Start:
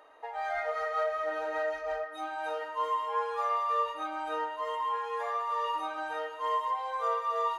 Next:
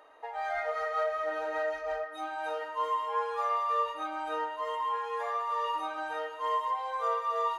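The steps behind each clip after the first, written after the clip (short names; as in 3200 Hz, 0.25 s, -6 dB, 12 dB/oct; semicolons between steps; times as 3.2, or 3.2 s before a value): nothing audible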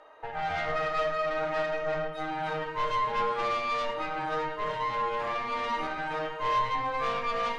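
tube stage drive 33 dB, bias 0.75; air absorption 60 m; reverb RT60 0.65 s, pre-delay 6 ms, DRR 3 dB; gain +6.5 dB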